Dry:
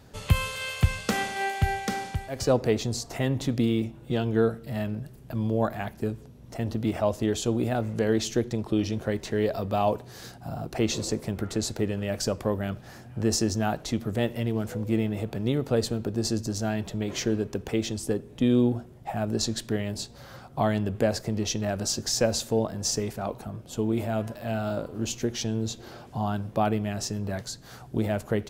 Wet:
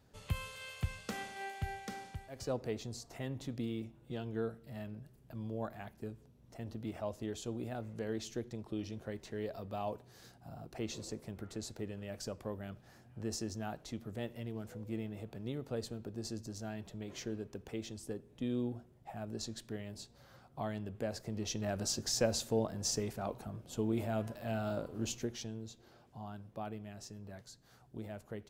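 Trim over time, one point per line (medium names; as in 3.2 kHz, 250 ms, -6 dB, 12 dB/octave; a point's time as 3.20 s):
21.01 s -14.5 dB
21.76 s -7.5 dB
25.09 s -7.5 dB
25.69 s -18 dB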